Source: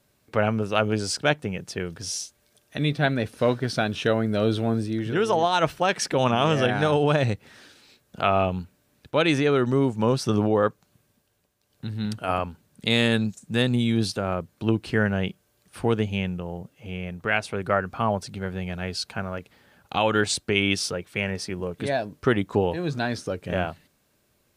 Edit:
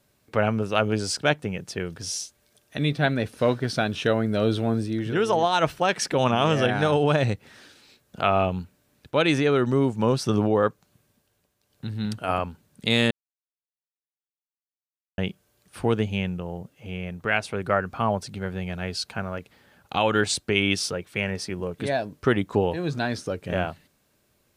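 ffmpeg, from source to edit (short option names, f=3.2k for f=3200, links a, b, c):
-filter_complex "[0:a]asplit=3[a][b][c];[a]atrim=end=13.11,asetpts=PTS-STARTPTS,afade=t=out:st=13.106:d=0.004:c=hsin[d];[b]atrim=start=13.11:end=15.18,asetpts=PTS-STARTPTS,volume=0[e];[c]atrim=start=15.18,asetpts=PTS-STARTPTS,afade=t=in:d=0.004:c=hsin[f];[d][e][f]concat=n=3:v=0:a=1"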